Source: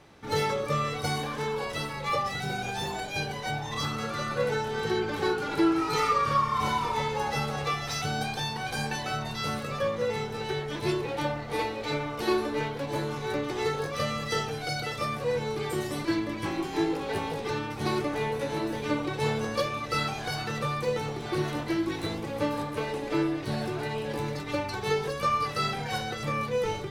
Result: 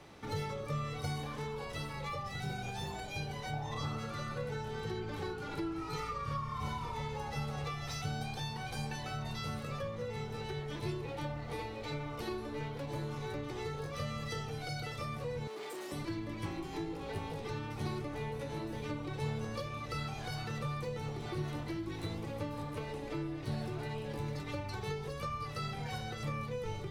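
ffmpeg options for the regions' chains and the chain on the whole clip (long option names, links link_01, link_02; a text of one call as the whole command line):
ffmpeg -i in.wav -filter_complex "[0:a]asettb=1/sr,asplit=3[link_01][link_02][link_03];[link_01]atrim=end=3.534[link_04];[link_02]atrim=start=3.53:end=3.99,asetpts=PTS-STARTPTS,afade=type=in:duration=0.004:curve=qsin,afade=type=out:start_time=0.456:duration=0.004:curve=qsin,acrossover=split=8400[link_05][link_06];[link_06]acompressor=threshold=-57dB:ratio=4:attack=1:release=60[link_07];[link_05][link_07]amix=inputs=2:normalize=0,equalizer=frequency=610:width=0.76:gain=7.5[link_08];[link_03]atrim=start=3.986[link_09];[link_04][link_08]acrossfade=duration=0.004:curve1=hsin:curve2=qsin[link_10];[link_10][link_09]acrossfade=duration=0.004:curve1=qsin:curve2=hsin,asettb=1/sr,asplit=3[link_11][link_12][link_13];[link_11]atrim=end=15.474[link_14];[link_12]atrim=start=15.47:end=15.92,asetpts=PTS-STARTPTS,afade=type=in:duration=0.004:curve=qsin,afade=type=out:start_time=0.446:duration=0.004:curve=qsin,asoftclip=type=hard:threshold=-33.5dB,highpass=frequency=270:width=0.5412,highpass=frequency=270:width=1.3066[link_15];[link_13]atrim=start=15.916[link_16];[link_14][link_15]acrossfade=duration=0.004:curve1=hsin:curve2=qsin[link_17];[link_17][link_16]acrossfade=duration=0.004:curve1=qsin:curve2=hsin,bandreject=frequency=1600:width=16,acrossover=split=140[link_18][link_19];[link_19]acompressor=threshold=-43dB:ratio=3[link_20];[link_18][link_20]amix=inputs=2:normalize=0" out.wav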